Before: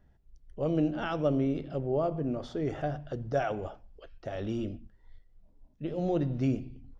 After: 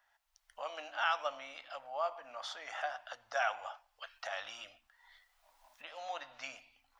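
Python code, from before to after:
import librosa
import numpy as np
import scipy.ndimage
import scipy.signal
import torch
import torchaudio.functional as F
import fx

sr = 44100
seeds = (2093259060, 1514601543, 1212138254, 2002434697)

y = fx.recorder_agc(x, sr, target_db=-25.0, rise_db_per_s=15.0, max_gain_db=30)
y = scipy.signal.sosfilt(scipy.signal.cheby2(4, 40, 420.0, 'highpass', fs=sr, output='sos'), y)
y = y * librosa.db_to_amplitude(5.0)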